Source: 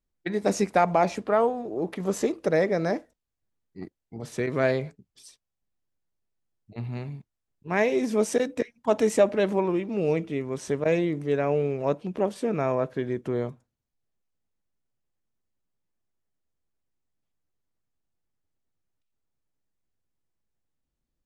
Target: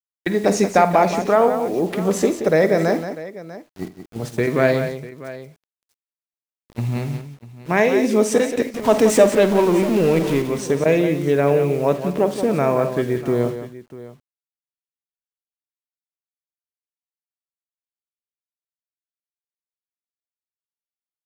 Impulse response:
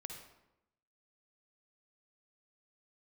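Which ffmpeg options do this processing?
-filter_complex "[0:a]asettb=1/sr,asplit=3[a][b][c];[a]atrim=end=8.744[d];[b]atrim=start=8.74:end=10.42,asetpts=PTS-STARTPTS,afade=t=in:d=0.004:c=qsin,afade=t=out:st=1.676:d=0.004:c=qsin,aeval=exprs='val(0)+0.5*0.0282*sgn(val(0))':c=same[e];[c]atrim=start=10.416[f];[d][e]acrossfade=d=0.004:c1=hsin:c2=qsin[g];[g][f]acrossfade=d=0.004:c1=qsin:c2=hsin,agate=range=-12dB:threshold=-38dB:ratio=16:detection=peak,asplit=2[h][i];[i]acompressor=threshold=-30dB:ratio=6,volume=-1.5dB[j];[h][j]amix=inputs=2:normalize=0,acrusher=bits=7:mix=0:aa=0.000001,aecho=1:1:50|83|177|645:0.2|0.119|0.335|0.15,volume=4.5dB"

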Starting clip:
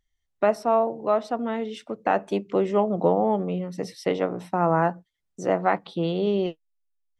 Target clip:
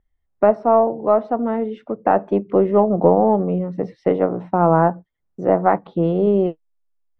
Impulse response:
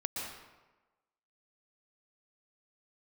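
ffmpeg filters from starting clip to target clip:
-af "aeval=exprs='0.422*(cos(1*acos(clip(val(0)/0.422,-1,1)))-cos(1*PI/2))+0.00944*(cos(4*acos(clip(val(0)/0.422,-1,1)))-cos(4*PI/2))':c=same,lowpass=1.2k,volume=7dB"

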